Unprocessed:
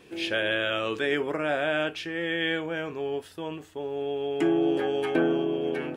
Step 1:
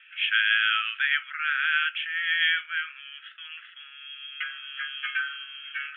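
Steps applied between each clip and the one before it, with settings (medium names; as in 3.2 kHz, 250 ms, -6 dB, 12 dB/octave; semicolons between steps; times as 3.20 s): Chebyshev band-pass 1.3–3.3 kHz, order 5; reverse; upward compressor, threshold -46 dBFS; reverse; trim +7.5 dB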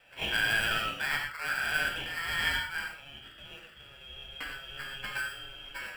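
in parallel at -5 dB: sample-rate reducer 3.2 kHz, jitter 0%; on the sum: reverberation, pre-delay 3 ms, DRR 1 dB; trim -9 dB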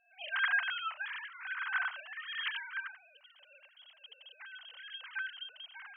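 formants replaced by sine waves; trim -5.5 dB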